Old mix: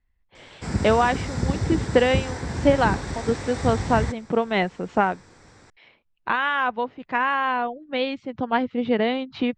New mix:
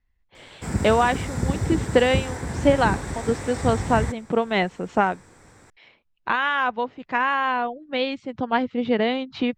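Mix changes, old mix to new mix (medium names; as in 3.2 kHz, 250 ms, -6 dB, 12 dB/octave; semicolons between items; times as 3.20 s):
background: add peaking EQ 4.9 kHz -8 dB 1.1 oct; master: remove distance through air 72 m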